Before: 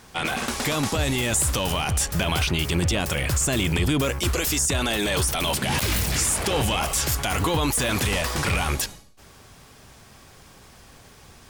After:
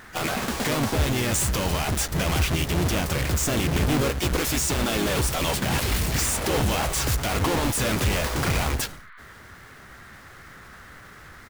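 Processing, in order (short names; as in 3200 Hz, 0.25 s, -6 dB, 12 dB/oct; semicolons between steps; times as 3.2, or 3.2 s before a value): half-waves squared off; band noise 1200–2100 Hz -44 dBFS; harmoniser -3 st -5 dB, +12 st -16 dB; gain -6 dB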